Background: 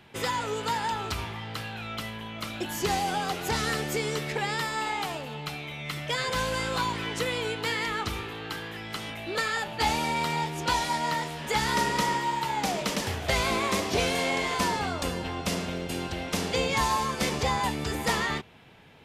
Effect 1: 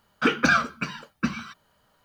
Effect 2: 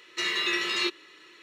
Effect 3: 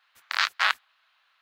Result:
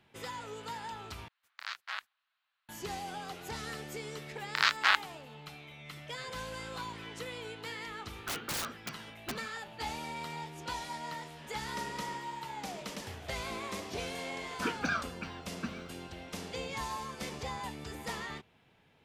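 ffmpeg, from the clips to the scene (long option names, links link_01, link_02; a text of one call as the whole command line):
ffmpeg -i bed.wav -i cue0.wav -i cue1.wav -i cue2.wav -filter_complex "[3:a]asplit=2[link_01][link_02];[1:a]asplit=2[link_03][link_04];[0:a]volume=-12.5dB[link_05];[link_03]aeval=exprs='(mod(8.41*val(0)+1,2)-1)/8.41':channel_layout=same[link_06];[link_05]asplit=2[link_07][link_08];[link_07]atrim=end=1.284[link_09];[link_01]atrim=end=1.41,asetpts=PTS-STARTPTS,volume=-16.5dB[link_10];[link_08]atrim=start=2.686[link_11];[link_02]atrim=end=1.41,asetpts=PTS-STARTPTS,volume=-2.5dB,afade=type=in:duration=0.004:curve=hsin,afade=type=out:start_time=1.406:duration=0.004:curve=hsin,adelay=4240[link_12];[link_06]atrim=end=2.04,asetpts=PTS-STARTPTS,volume=-12dB,afade=type=in:duration=0.004:curve=hsin,afade=type=out:start_time=2.036:duration=0.004:curve=hsin,adelay=8050[link_13];[link_04]atrim=end=2.04,asetpts=PTS-STARTPTS,volume=-13dB,afade=type=in:duration=0.004:curve=hsin,afade=type=out:start_time=2.036:duration=0.004:curve=hsin,adelay=14400[link_14];[link_09][link_10]acrossfade=duration=0.004:curve1=hsin:curve2=hsin[link_15];[link_15][link_11]acrossfade=duration=0.004:curve1=hsin:curve2=hsin[link_16];[link_16][link_12][link_13][link_14]amix=inputs=4:normalize=0" out.wav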